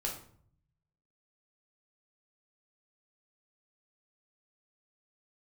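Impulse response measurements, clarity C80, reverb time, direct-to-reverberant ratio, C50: 10.5 dB, 0.55 s, −1.5 dB, 6.5 dB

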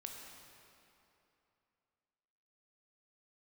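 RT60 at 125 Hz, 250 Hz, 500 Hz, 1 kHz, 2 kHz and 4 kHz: 2.9, 2.9, 2.9, 2.9, 2.6, 2.2 seconds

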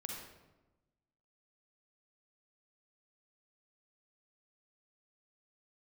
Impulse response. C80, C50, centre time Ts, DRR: 3.5 dB, 0.5 dB, 60 ms, −1.0 dB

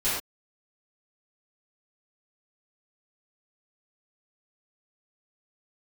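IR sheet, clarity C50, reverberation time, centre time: 0.0 dB, non-exponential decay, 58 ms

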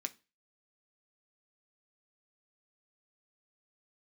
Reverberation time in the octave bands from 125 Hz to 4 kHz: 0.35, 0.35, 0.30, 0.30, 0.30, 0.30 seconds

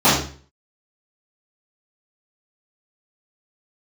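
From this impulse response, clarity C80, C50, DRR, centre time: 7.0 dB, 3.0 dB, −15.0 dB, 46 ms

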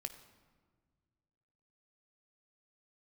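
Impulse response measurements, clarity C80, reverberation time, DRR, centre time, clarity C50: 12.5 dB, 1.7 s, 7.5 dB, 12 ms, 11.0 dB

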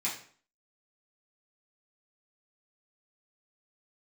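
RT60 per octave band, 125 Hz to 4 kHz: 0.50, 0.55, 0.50, 0.50, 0.45, 0.40 seconds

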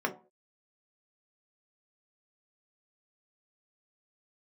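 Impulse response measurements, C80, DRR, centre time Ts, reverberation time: 19.5 dB, 1.5 dB, 10 ms, 0.40 s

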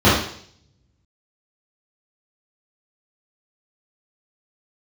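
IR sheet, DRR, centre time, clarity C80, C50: −11.0 dB, 53 ms, 6.5 dB, 2.0 dB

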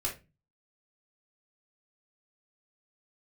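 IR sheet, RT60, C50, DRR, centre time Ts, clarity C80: 0.25 s, 9.5 dB, −3.0 dB, 19 ms, 18.5 dB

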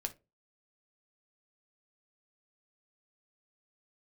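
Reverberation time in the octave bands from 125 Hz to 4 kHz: 0.40, 0.30, 0.30, 0.20, 0.20, 0.15 seconds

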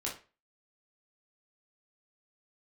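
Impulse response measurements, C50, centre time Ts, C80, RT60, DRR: 7.5 dB, 26 ms, 15.0 dB, 0.35 s, −4.0 dB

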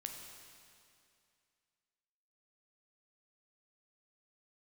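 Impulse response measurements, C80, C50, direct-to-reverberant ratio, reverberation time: 5.0 dB, 4.0 dB, 2.5 dB, 2.4 s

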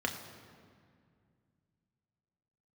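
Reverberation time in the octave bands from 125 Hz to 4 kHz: 3.4, 3.0, 2.3, 2.0, 1.9, 1.4 seconds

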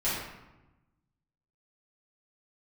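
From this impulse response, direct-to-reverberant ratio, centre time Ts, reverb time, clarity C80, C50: −12.0 dB, 72 ms, 1.0 s, 3.0 dB, 0.0 dB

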